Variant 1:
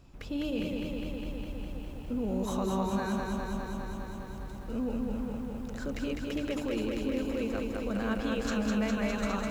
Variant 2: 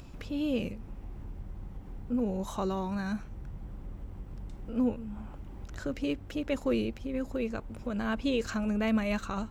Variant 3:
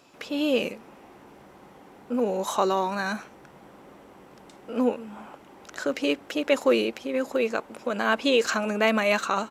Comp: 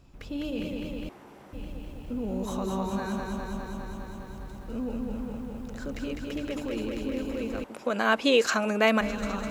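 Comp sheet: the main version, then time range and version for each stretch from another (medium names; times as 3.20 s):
1
1.09–1.53 s: from 3
7.64–9.01 s: from 3
not used: 2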